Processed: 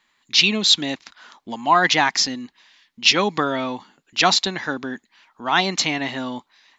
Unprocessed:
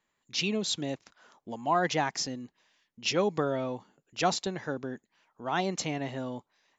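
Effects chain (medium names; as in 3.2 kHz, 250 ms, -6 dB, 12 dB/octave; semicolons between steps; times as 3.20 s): ten-band graphic EQ 125 Hz -7 dB, 250 Hz +4 dB, 500 Hz -6 dB, 1 kHz +5 dB, 2 kHz +6 dB, 4 kHz +10 dB; trim +7 dB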